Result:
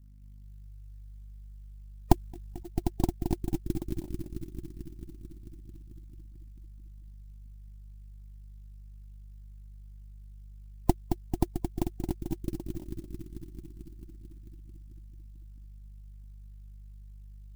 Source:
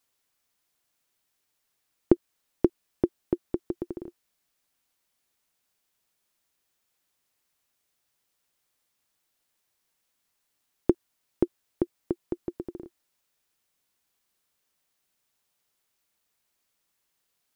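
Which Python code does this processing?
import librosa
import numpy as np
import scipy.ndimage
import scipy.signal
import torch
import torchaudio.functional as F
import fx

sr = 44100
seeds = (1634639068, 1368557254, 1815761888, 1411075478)

y = fx.tracing_dist(x, sr, depth_ms=0.4)
y = fx.add_hum(y, sr, base_hz=50, snr_db=20)
y = fx.low_shelf(y, sr, hz=160.0, db=2.5)
y = fx.echo_filtered(y, sr, ms=221, feedback_pct=80, hz=930.0, wet_db=-5.5)
y = fx.over_compress(y, sr, threshold_db=-27.0, ratio=-0.5, at=(2.12, 2.65), fade=0.02)
y = fx.high_shelf(y, sr, hz=2200.0, db=9.5)
y = fx.fixed_phaser(y, sr, hz=2200.0, stages=8)
y = fx.spec_gate(y, sr, threshold_db=-25, keep='strong')
y = fx.clock_jitter(y, sr, seeds[0], jitter_ms=0.066)
y = y * 10.0 ** (2.0 / 20.0)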